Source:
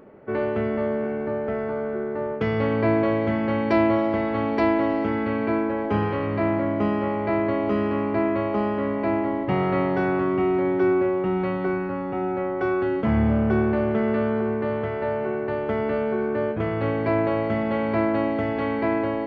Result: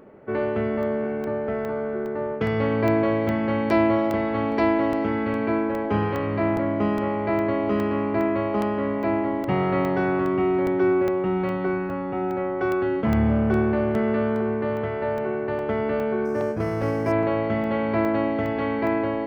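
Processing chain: crackling interface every 0.41 s, samples 64, zero, from 0.83 s; 16.25–17.12 s: decimation joined by straight lines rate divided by 6×

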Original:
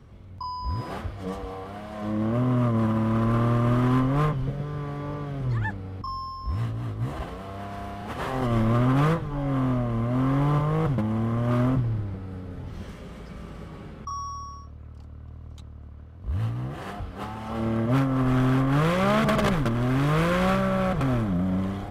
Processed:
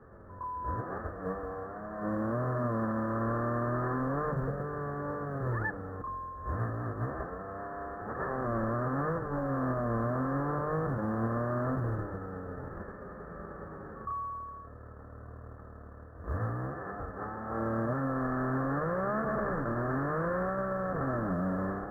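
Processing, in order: formants flattened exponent 0.6; rippled Chebyshev low-pass 1.8 kHz, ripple 6 dB; hum notches 50/100/150/200/250 Hz; peak limiter -24 dBFS, peak gain reduction 9 dB; short-mantissa float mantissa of 6-bit; pre-echo 113 ms -15 dB

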